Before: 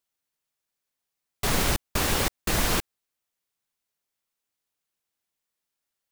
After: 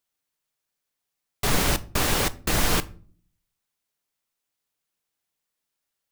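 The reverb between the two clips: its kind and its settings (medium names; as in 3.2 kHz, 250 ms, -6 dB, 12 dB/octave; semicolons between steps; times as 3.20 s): simulated room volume 390 m³, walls furnished, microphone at 0.4 m; trim +1.5 dB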